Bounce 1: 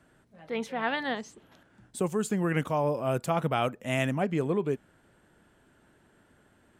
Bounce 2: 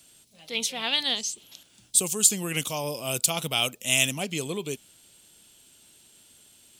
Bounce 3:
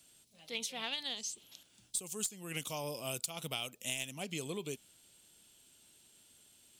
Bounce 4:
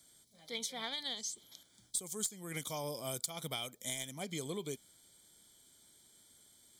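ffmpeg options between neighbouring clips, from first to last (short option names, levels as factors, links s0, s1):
-af "aexciter=amount=11.3:drive=7:freq=2600,volume=0.596"
-af "aeval=exprs='0.891*(cos(1*acos(clip(val(0)/0.891,-1,1)))-cos(1*PI/2))+0.0355*(cos(2*acos(clip(val(0)/0.891,-1,1)))-cos(2*PI/2))+0.141*(cos(3*acos(clip(val(0)/0.891,-1,1)))-cos(3*PI/2))+0.0141*(cos(7*acos(clip(val(0)/0.891,-1,1)))-cos(7*PI/2))':c=same,acompressor=threshold=0.02:ratio=10"
-af "asuperstop=centerf=2700:order=12:qfactor=4.4"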